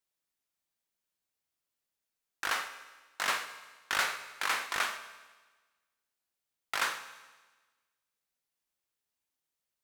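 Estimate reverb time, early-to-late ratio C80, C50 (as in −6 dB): 1.3 s, 12.5 dB, 11.0 dB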